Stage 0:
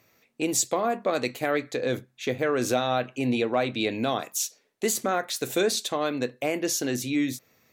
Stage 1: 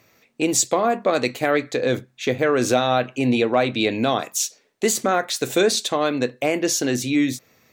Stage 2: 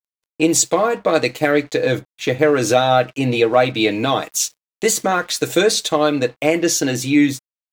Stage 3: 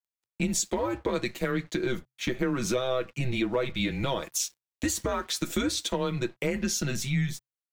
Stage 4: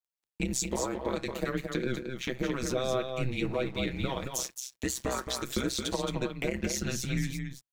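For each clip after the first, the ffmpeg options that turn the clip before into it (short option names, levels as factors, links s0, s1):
-af "equalizer=f=12000:w=3:g=-12,volume=2"
-af "aecho=1:1:6.4:0.61,aeval=exprs='sgn(val(0))*max(abs(val(0))-0.00531,0)':c=same,volume=1.33"
-af "acompressor=threshold=0.0794:ratio=2.5,afreqshift=-130,volume=0.531"
-af "tremolo=f=130:d=0.947,aecho=1:1:221:0.501"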